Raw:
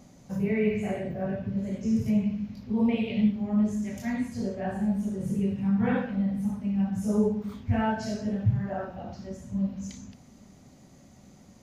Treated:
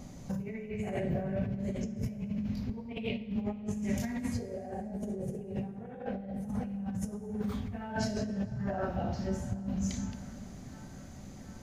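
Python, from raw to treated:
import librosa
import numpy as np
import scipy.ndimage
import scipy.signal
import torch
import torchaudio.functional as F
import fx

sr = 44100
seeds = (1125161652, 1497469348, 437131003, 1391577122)

p1 = fx.spec_box(x, sr, start_s=4.39, length_s=2.09, low_hz=350.0, high_hz=830.0, gain_db=11)
p2 = p1 + fx.echo_banded(p1, sr, ms=733, feedback_pct=80, hz=1500.0, wet_db=-23, dry=0)
p3 = fx.over_compress(p2, sr, threshold_db=-35.0, ratio=-1.0)
p4 = fx.low_shelf(p3, sr, hz=75.0, db=11.5)
p5 = fx.rev_plate(p4, sr, seeds[0], rt60_s=3.6, hf_ratio=0.6, predelay_ms=0, drr_db=12.0)
y = F.gain(torch.from_numpy(p5), -3.0).numpy()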